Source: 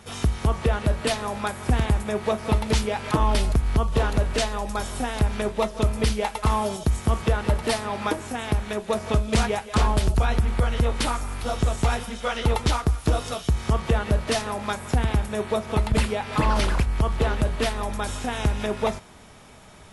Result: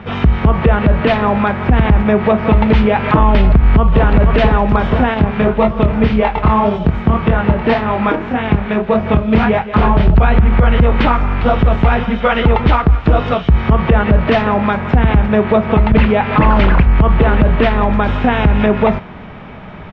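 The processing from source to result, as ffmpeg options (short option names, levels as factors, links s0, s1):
-filter_complex "[0:a]asplit=2[s0][s1];[s1]afade=t=in:st=3.47:d=0.01,afade=t=out:st=4.09:d=0.01,aecho=0:1:480|960|1440|1920|2400|2880|3360|3840|4320|4800|5280|5760:0.398107|0.29858|0.223935|0.167951|0.125964|0.0944727|0.0708545|0.0531409|0.0398557|0.0298918|0.0224188|0.0168141[s2];[s0][s2]amix=inputs=2:normalize=0,asettb=1/sr,asplit=3[s3][s4][s5];[s3]atrim=end=5.144[s6];[s4]atrim=start=5.14:end=10.13,asetpts=PTS-STARTPTS,afade=t=in:d=0.004:c=qsin,afade=t=out:st=4.986:d=0.004:c=qsin,flanger=delay=22.5:depth=5:speed=1.8[s7];[s5]atrim=start=10.126[s8];[s6][s7]acrossfade=d=0.004:c1=hsin:c2=qsin[s9];[s9][s8]acrossfade=d=0.004:c1=qsin:c2=hsin,lowpass=f=2700:w=0.5412,lowpass=f=2700:w=1.3066,equalizer=f=180:t=o:w=0.7:g=6.5,alimiter=level_in=6.31:limit=0.891:release=50:level=0:latency=1,volume=0.891"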